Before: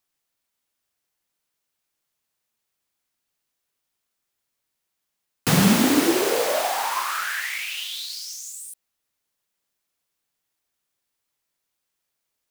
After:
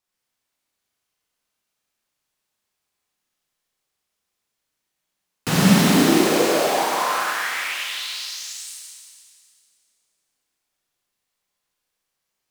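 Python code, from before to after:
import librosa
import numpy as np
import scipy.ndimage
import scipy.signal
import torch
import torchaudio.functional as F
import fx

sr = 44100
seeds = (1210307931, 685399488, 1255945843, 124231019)

y = fx.high_shelf(x, sr, hz=12000.0, db=-8.0)
y = fx.rev_schroeder(y, sr, rt60_s=2.2, comb_ms=30, drr_db=-5.0)
y = y * 10.0 ** (-3.0 / 20.0)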